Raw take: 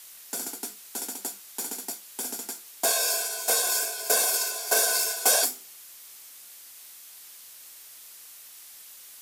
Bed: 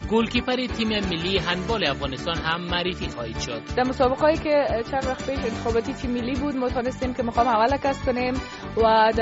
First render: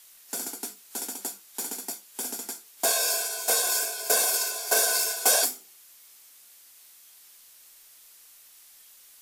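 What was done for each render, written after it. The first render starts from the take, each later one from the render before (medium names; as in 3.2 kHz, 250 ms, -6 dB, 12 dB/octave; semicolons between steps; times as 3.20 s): noise print and reduce 6 dB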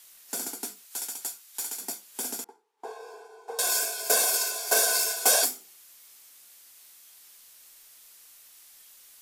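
0.85–1.81 s: high-pass 1.2 kHz 6 dB/octave; 2.44–3.59 s: two resonant band-passes 610 Hz, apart 0.93 oct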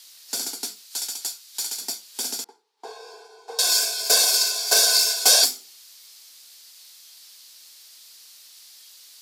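high-pass 170 Hz 12 dB/octave; peaking EQ 4.5 kHz +13.5 dB 1.1 oct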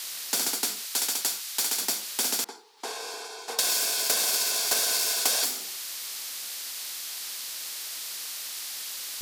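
compression, threshold -22 dBFS, peak gain reduction 10.5 dB; spectrum-flattening compressor 2:1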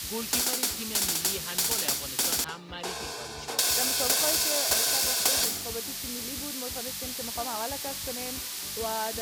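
add bed -15 dB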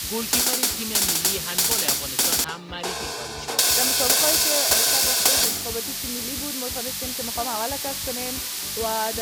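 trim +6 dB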